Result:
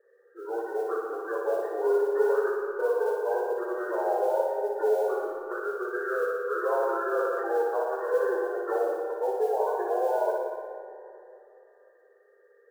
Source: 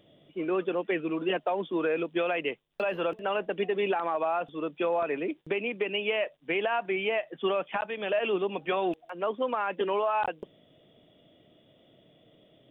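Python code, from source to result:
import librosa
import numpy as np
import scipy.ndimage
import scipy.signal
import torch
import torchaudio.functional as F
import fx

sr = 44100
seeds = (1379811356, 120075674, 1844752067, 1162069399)

p1 = fx.partial_stretch(x, sr, pct=76)
p2 = scipy.signal.sosfilt(scipy.signal.ellip(4, 1.0, 40, 420.0, 'highpass', fs=sr, output='sos'), p1)
p3 = fx.spec_gate(p2, sr, threshold_db=-20, keep='strong')
p4 = scipy.signal.sosfilt(scipy.signal.butter(2, 2200.0, 'lowpass', fs=sr, output='sos'), p3)
p5 = fx.tilt_eq(p4, sr, slope=-3.0)
p6 = fx.mod_noise(p5, sr, seeds[0], snr_db=31)
p7 = p6 + fx.room_flutter(p6, sr, wall_m=10.1, rt60_s=0.98, dry=0)
p8 = fx.rev_freeverb(p7, sr, rt60_s=2.8, hf_ratio=0.3, predelay_ms=85, drr_db=6.5)
y = fx.sustainer(p8, sr, db_per_s=22.0, at=(6.74, 7.46))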